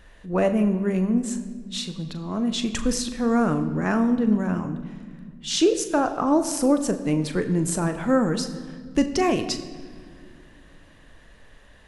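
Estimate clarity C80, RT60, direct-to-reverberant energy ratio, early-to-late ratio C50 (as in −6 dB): 12.0 dB, 1.9 s, 8.0 dB, 11.5 dB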